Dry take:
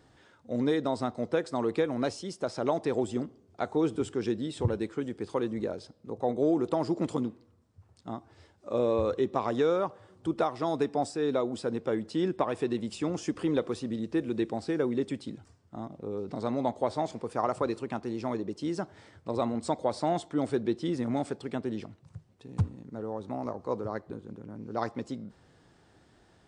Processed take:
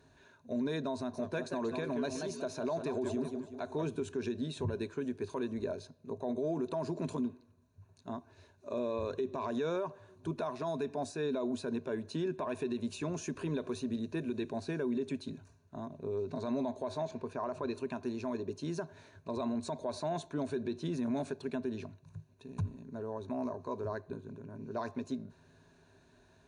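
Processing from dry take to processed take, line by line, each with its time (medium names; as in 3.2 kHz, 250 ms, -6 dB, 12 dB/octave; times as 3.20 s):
0.95–3.87 s: modulated delay 185 ms, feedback 42%, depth 219 cents, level -9 dB
17.05–17.75 s: distance through air 80 m
whole clip: rippled EQ curve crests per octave 1.5, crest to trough 12 dB; peak limiter -22.5 dBFS; trim -4 dB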